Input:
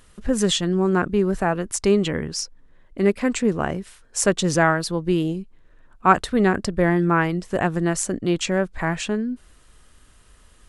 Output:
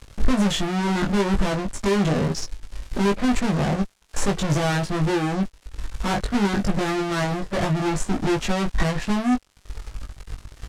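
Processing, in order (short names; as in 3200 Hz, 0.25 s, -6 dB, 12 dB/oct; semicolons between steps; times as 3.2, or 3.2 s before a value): Wiener smoothing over 15 samples; crackle 600/s -43 dBFS; transient shaper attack +9 dB, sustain -5 dB; harmonic-percussive split percussive -13 dB; de-esser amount 85%; fuzz box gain 43 dB, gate -50 dBFS; LPF 9200 Hz 12 dB/oct; low shelf 67 Hz +10 dB; doubler 20 ms -3 dB; upward expander 1.5:1, over -27 dBFS; gain -6 dB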